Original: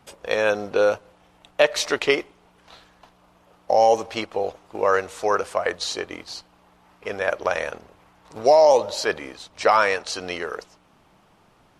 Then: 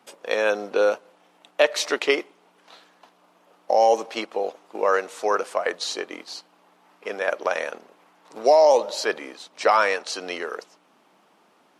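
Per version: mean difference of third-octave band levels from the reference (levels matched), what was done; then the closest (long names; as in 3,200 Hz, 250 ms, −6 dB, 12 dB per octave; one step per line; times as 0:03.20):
2.0 dB: high-pass filter 220 Hz 24 dB per octave
level −1 dB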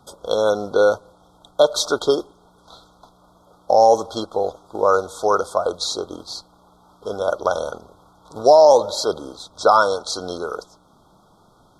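3.0 dB: linear-phase brick-wall band-stop 1,500–3,200 Hz
level +3.5 dB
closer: first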